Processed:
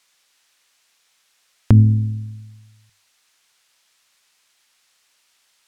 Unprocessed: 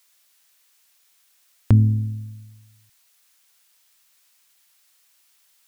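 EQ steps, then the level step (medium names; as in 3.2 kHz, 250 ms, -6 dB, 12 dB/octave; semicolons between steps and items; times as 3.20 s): distance through air 51 m; hum notches 50/100 Hz; +4.5 dB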